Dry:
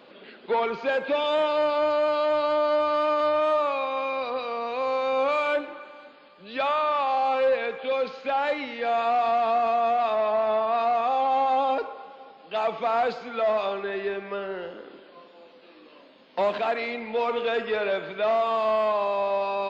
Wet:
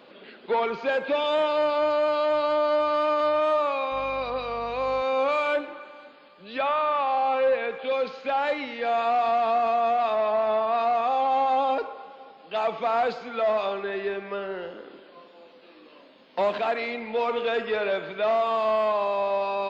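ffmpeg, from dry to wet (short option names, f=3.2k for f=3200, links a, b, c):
-filter_complex "[0:a]asettb=1/sr,asplit=3[a][b][c];[a]atrim=end=3.924[d];[b]atrim=start=3.92:end=5.02,asetpts=PTS-STARTPTS,afade=t=in:d=0.004:c=qsin,afade=t=out:st=1.096:d=0.004:c=qsin,aeval=exprs='val(0)+0.00501*(sin(2*PI*50*n/s)+sin(2*PI*2*50*n/s)/2+sin(2*PI*3*50*n/s)/3+sin(2*PI*4*50*n/s)/4+sin(2*PI*5*50*n/s)/5)':c=same[e];[c]atrim=start=5.016[f];[d][e]acrossfade=d=0.004:c1=hsin:c2=qsin[g];[g][f]acrossfade=d=0.004:c1=qsin:c2=hsin,asettb=1/sr,asplit=3[h][i][j];[h]atrim=end=6.584[k];[i]atrim=start=6.58:end=7.79,asetpts=PTS-STARTPTS,afade=t=in:d=0.004:c=qsin,afade=t=out:st=1.206:d=0.004:c=qsin,acrossover=split=3800[l][m];[m]acompressor=threshold=-59dB:ratio=4:attack=1:release=60[n];[l][n]amix=inputs=2:normalize=0[o];[j]atrim=start=7.786[p];[k][o]acrossfade=d=0.004:c1=hsin:c2=qsin[q];[q][p]acrossfade=d=0.004:c1=qsin:c2=hsin"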